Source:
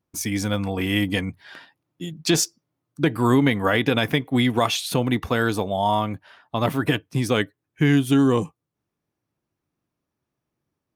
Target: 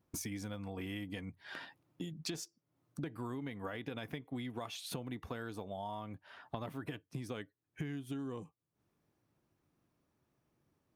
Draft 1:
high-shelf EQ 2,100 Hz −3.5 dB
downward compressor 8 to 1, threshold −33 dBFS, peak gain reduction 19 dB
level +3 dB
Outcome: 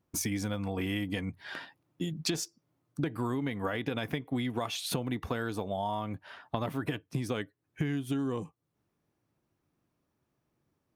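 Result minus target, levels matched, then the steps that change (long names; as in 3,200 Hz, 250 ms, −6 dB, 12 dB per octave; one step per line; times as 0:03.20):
downward compressor: peak gain reduction −9 dB
change: downward compressor 8 to 1, threshold −43.5 dBFS, peak gain reduction 28 dB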